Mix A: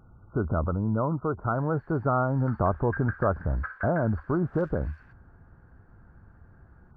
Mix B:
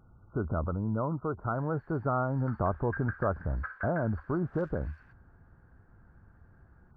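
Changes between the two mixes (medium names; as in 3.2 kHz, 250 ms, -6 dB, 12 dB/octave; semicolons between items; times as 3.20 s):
speech -4.5 dB; background -3.0 dB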